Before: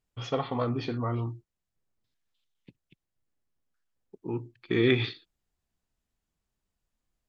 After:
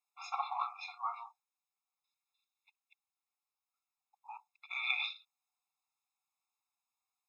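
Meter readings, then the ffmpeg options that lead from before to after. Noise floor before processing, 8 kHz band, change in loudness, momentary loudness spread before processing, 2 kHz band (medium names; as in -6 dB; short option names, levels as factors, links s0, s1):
under -85 dBFS, no reading, -8.0 dB, 16 LU, -3.0 dB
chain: -af "afftfilt=real='re*eq(mod(floor(b*sr/1024/690),2),1)':imag='im*eq(mod(floor(b*sr/1024/690),2),1)':win_size=1024:overlap=0.75"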